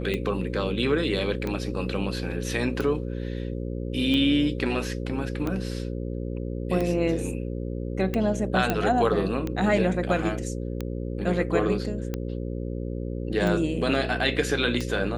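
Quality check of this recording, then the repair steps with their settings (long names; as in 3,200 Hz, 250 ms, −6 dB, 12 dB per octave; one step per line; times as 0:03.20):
mains buzz 60 Hz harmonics 9 −31 dBFS
scratch tick 45 rpm −16 dBFS
0:08.70: click −10 dBFS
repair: click removal
hum removal 60 Hz, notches 9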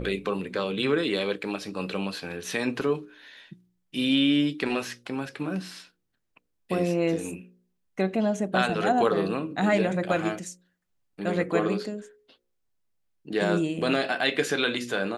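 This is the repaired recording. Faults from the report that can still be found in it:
none of them is left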